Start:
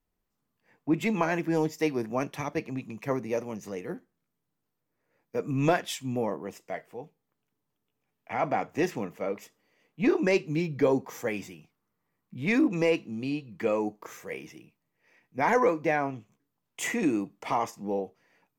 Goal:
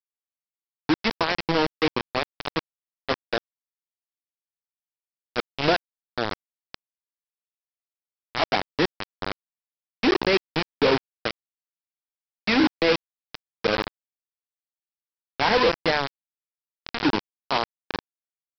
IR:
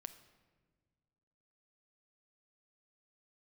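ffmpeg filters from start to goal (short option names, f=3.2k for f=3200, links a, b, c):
-filter_complex "[0:a]highpass=f=67:p=1,acrossover=split=160[a][b];[a]acompressor=threshold=-45dB:ratio=2[c];[c][b]amix=inputs=2:normalize=0,aresample=11025,acrusher=bits=3:mix=0:aa=0.000001,aresample=44100,volume=2.5dB"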